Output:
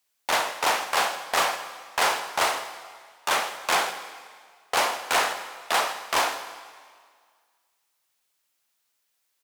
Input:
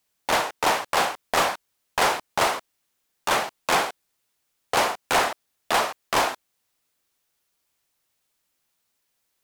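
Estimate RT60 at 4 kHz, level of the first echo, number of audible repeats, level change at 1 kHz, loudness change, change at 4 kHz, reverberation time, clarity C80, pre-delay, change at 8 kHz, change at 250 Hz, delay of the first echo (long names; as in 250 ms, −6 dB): 1.7 s, −18.0 dB, 1, −1.5 dB, −1.0 dB, +0.5 dB, 1.9 s, 11.0 dB, 26 ms, +0.5 dB, −7.0 dB, 160 ms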